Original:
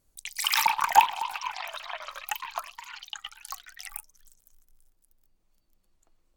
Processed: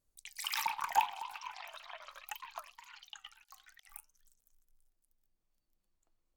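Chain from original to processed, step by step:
flanger 0.42 Hz, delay 1.5 ms, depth 9 ms, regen +87%
0:03.32–0:03.89: volume swells 189 ms
level −7 dB

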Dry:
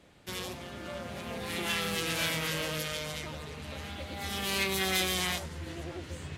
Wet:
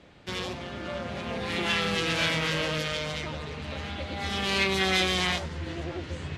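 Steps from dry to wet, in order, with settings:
low-pass filter 5,000 Hz 12 dB per octave
level +5.5 dB

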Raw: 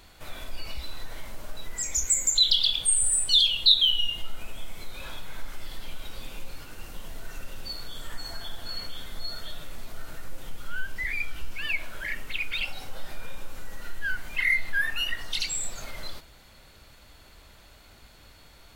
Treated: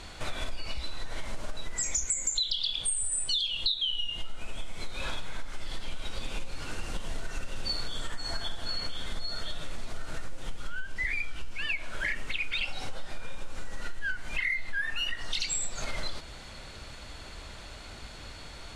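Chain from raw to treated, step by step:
low-pass filter 9,200 Hz 24 dB per octave
downward compressor 12 to 1, threshold −35 dBFS, peak gain reduction 22 dB
level +8.5 dB

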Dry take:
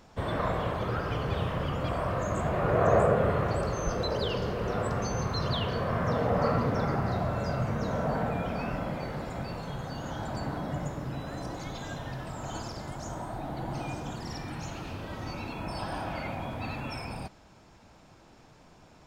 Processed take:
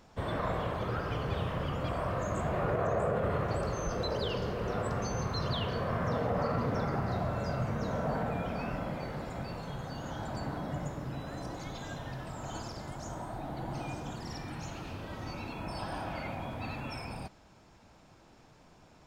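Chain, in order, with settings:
brickwall limiter −19 dBFS, peak gain reduction 7.5 dB
level −3 dB

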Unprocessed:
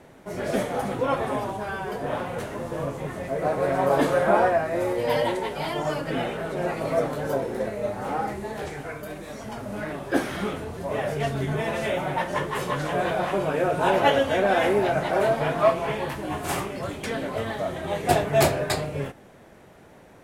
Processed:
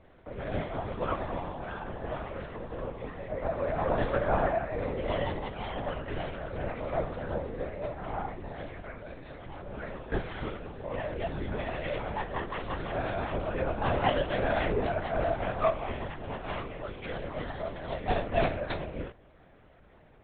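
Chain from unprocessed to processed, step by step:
linear-prediction vocoder at 8 kHz whisper
level −7 dB

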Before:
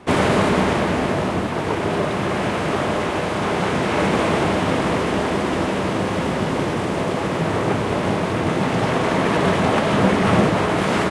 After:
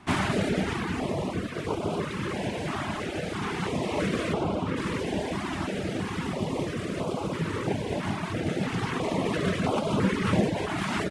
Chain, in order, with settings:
reverb reduction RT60 0.92 s
0:04.32–0:04.76: high-shelf EQ 6,200 Hz → 3,400 Hz −12 dB
notch on a step sequencer 3 Hz 490–1,800 Hz
level −5 dB

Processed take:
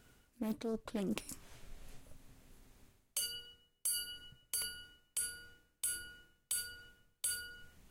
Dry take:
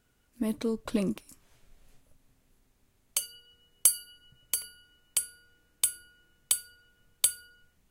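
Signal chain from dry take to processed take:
reversed playback
downward compressor 8 to 1, threshold −42 dBFS, peak gain reduction 25.5 dB
reversed playback
highs frequency-modulated by the lows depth 0.35 ms
level +6.5 dB

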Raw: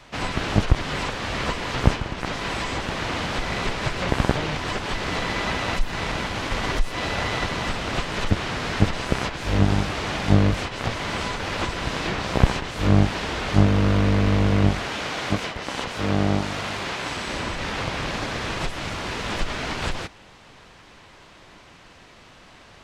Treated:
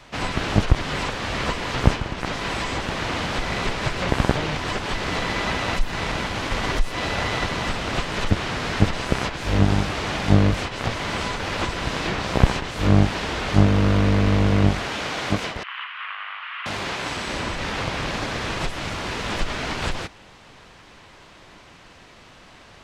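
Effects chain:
0:15.63–0:16.66: elliptic band-pass filter 1,100–3,000 Hz, stop band 70 dB
level +1 dB

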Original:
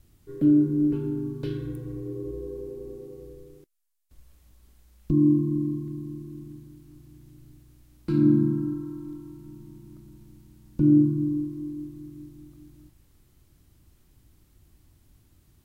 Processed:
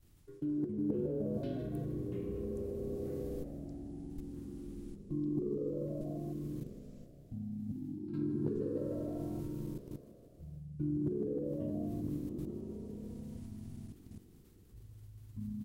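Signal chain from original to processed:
output level in coarse steps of 23 dB
echo with shifted repeats 156 ms, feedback 59%, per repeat +65 Hz, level −14 dB
reversed playback
downward compressor 16 to 1, threshold −38 dBFS, peak gain reduction 18.5 dB
reversed playback
delay with pitch and tempo change per echo 95 ms, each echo −6 semitones, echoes 3, each echo −6 dB
level +5.5 dB

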